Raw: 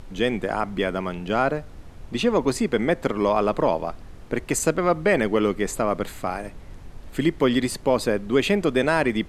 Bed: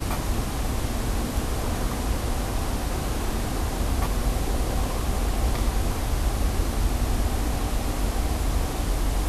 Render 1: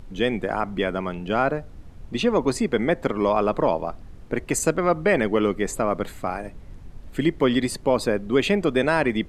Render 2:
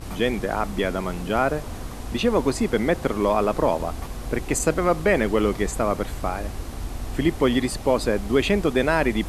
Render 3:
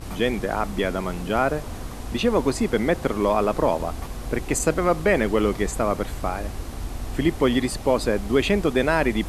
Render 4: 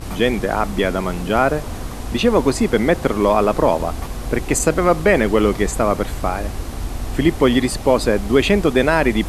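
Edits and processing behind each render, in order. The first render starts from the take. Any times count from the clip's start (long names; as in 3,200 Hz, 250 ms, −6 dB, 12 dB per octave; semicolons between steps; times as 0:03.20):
broadband denoise 6 dB, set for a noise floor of −42 dBFS
mix in bed −8 dB
no processing that can be heard
level +5.5 dB; brickwall limiter −2 dBFS, peak gain reduction 1.5 dB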